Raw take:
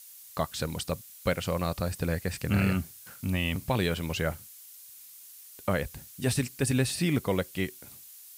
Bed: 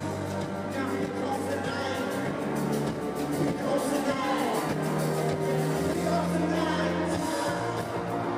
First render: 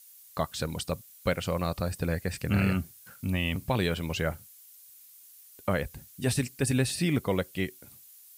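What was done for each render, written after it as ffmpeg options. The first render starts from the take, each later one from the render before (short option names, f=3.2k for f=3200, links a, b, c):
-af "afftdn=nr=6:nf=-50"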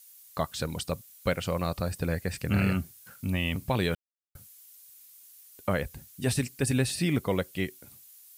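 -filter_complex "[0:a]asplit=3[a][b][c];[a]atrim=end=3.95,asetpts=PTS-STARTPTS,afade=t=out:st=3.946:d=0.004:c=hsin[d];[b]atrim=start=3.95:end=4.35,asetpts=PTS-STARTPTS,volume=0[e];[c]atrim=start=4.35,asetpts=PTS-STARTPTS,afade=t=in:d=0.004:c=hsin[f];[d][e][f]concat=n=3:v=0:a=1"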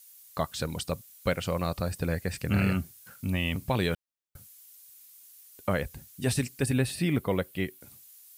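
-filter_complex "[0:a]asettb=1/sr,asplit=3[a][b][c];[a]atrim=end=6.664[d];[b]atrim=start=6.66:end=7.81,asetpts=PTS-STARTPTS,afade=t=in:d=0.004:c=qsin,afade=t=out:st=1.146:d=0.004:c=qsin,equalizer=f=6.2k:w=1.1:g=-7.5[e];[c]atrim=start=7.806[f];[d][e]acrossfade=d=0.004:c1=hsin:c2=qsin[g];[g][f]acrossfade=d=0.004:c1=qsin:c2=hsin"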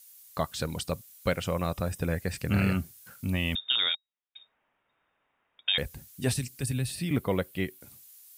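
-filter_complex "[0:a]asettb=1/sr,asplit=3[a][b][c];[a]atrim=end=1.444[d];[b]atrim=start=1.44:end=2.2,asetpts=PTS-STARTPTS,afade=t=in:d=0.004:c=qsin,afade=t=out:st=0.756:d=0.004:c=qsin,asuperstop=centerf=4400:order=4:qfactor=6.3[e];[c]atrim=start=2.196[f];[d][e]acrossfade=d=0.004:c1=hsin:c2=qsin[g];[g][f]acrossfade=d=0.004:c1=qsin:c2=hsin,asettb=1/sr,asplit=3[h][i][j];[h]atrim=end=3.554[k];[i]atrim=start=3.55:end=5.78,asetpts=PTS-STARTPTS,afade=t=in:d=0.004:c=qsin,afade=t=out:st=2.226:d=0.004:c=qsin,lowpass=f=3.2k:t=q:w=0.5098,lowpass=f=3.2k:t=q:w=0.6013,lowpass=f=3.2k:t=q:w=0.9,lowpass=f=3.2k:t=q:w=2.563,afreqshift=-3800[l];[j]atrim=start=5.776[m];[k][l]acrossfade=d=0.004:c1=hsin:c2=qsin[n];[n][m]acrossfade=d=0.004:c1=qsin:c2=hsin,asettb=1/sr,asplit=3[o][p][q];[o]atrim=end=6.344[r];[p]atrim=start=6.34:end=7.11,asetpts=PTS-STARTPTS,afade=t=in:d=0.004:c=qsin,afade=t=out:st=0.766:d=0.004:c=qsin,acrossover=split=170|3000[s][t][u];[t]acompressor=threshold=-56dB:ratio=1.5:attack=3.2:release=140:knee=2.83:detection=peak[v];[s][v][u]amix=inputs=3:normalize=0[w];[q]atrim=start=7.106[x];[r][w]acrossfade=d=0.004:c1=hsin:c2=qsin[y];[y][x]acrossfade=d=0.004:c1=qsin:c2=hsin"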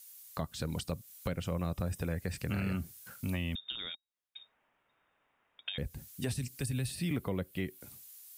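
-filter_complex "[0:a]acrossover=split=350[a][b];[a]alimiter=level_in=4.5dB:limit=-24dB:level=0:latency=1,volume=-4.5dB[c];[b]acompressor=threshold=-39dB:ratio=6[d];[c][d]amix=inputs=2:normalize=0"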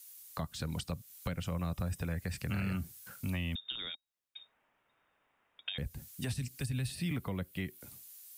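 -filter_complex "[0:a]acrossover=split=270|620|5500[a][b][c][d];[b]acompressor=threshold=-52dB:ratio=6[e];[d]alimiter=level_in=13dB:limit=-24dB:level=0:latency=1:release=389,volume=-13dB[f];[a][e][c][f]amix=inputs=4:normalize=0"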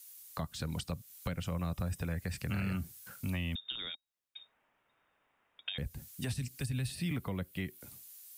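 -af anull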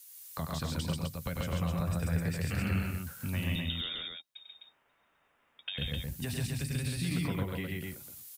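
-filter_complex "[0:a]asplit=2[a][b];[b]adelay=13,volume=-12.5dB[c];[a][c]amix=inputs=2:normalize=0,aecho=1:1:96.21|137|256.6:0.501|0.891|0.631"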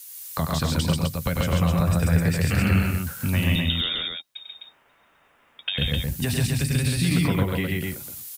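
-af "volume=11dB"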